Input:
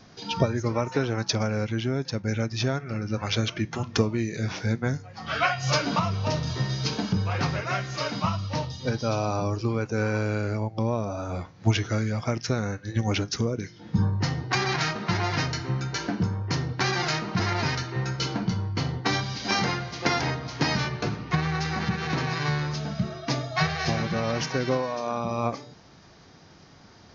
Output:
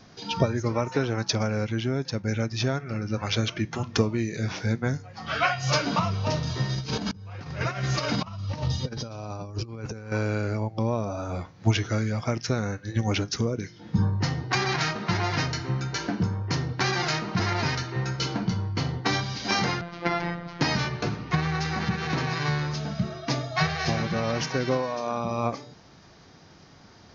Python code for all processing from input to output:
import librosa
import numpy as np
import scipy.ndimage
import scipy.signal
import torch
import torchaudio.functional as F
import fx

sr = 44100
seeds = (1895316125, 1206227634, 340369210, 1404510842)

y = fx.chain(x, sr, fx.low_shelf(hz=120.0, db=8.0),
    fx.over_compress(threshold_db=-30.0, ratio=-0.5), at=(6.75, 10.12))
y = fx.chain(y, sr, fx.lowpass(hz=2800.0, slope=12),
    fx.robotise(hz=172.0), at=(19.81, 20.61))